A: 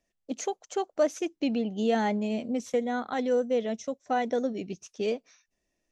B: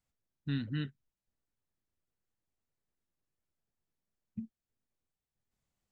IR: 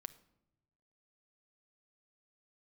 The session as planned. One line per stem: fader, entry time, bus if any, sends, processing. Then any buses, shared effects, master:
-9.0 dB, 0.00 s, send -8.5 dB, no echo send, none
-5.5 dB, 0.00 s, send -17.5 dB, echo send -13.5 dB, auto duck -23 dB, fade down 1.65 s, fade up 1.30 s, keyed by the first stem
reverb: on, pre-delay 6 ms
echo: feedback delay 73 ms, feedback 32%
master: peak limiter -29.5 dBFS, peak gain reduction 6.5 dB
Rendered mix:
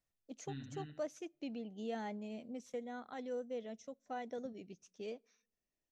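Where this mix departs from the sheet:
stem A -9.0 dB -> -16.5 dB; reverb return -6.0 dB

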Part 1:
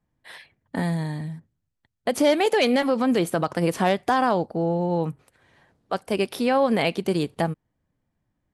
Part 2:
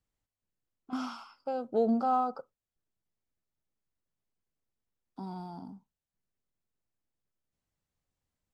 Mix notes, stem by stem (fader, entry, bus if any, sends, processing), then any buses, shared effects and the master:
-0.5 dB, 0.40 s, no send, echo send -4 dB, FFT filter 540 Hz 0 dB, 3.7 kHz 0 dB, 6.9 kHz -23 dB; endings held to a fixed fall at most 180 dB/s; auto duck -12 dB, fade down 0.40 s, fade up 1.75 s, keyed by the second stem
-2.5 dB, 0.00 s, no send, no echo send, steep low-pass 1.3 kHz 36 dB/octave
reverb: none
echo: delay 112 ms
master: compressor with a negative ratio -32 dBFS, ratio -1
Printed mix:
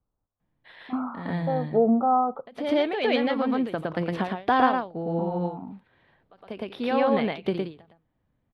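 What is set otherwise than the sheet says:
stem 2 -2.5 dB -> +6.5 dB; master: missing compressor with a negative ratio -32 dBFS, ratio -1

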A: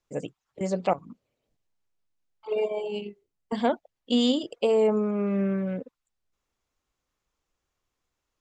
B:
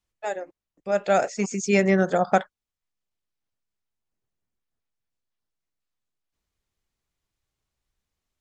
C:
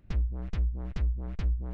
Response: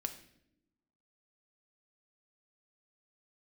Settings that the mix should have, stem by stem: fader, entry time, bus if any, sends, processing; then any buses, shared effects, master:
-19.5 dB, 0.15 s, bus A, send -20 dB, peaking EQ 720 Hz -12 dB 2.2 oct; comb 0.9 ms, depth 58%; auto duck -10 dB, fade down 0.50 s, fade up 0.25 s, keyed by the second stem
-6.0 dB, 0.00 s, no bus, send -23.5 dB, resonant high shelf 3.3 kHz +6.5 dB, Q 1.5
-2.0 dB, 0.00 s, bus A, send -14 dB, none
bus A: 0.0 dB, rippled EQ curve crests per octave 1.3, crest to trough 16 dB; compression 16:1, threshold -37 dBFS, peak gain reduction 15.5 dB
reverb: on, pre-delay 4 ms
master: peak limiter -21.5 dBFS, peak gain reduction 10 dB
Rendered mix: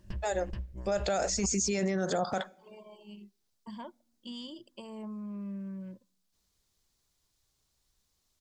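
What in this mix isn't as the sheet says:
stem A: missing peaking EQ 720 Hz -12 dB 2.2 oct; stem B -6.0 dB -> +3.0 dB

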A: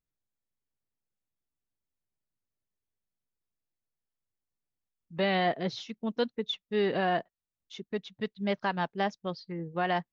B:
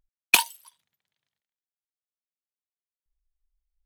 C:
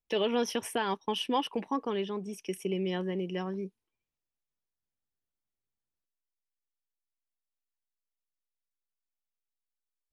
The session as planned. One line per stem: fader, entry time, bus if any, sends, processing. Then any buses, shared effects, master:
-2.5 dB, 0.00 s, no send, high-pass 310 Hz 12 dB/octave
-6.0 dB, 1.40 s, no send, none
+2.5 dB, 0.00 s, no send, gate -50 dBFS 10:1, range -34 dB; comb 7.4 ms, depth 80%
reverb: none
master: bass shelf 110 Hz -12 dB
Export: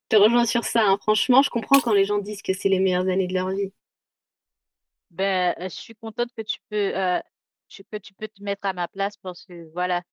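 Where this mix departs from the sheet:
stem A -2.5 dB -> +5.5 dB; stem C +2.5 dB -> +9.5 dB; master: missing bass shelf 110 Hz -12 dB

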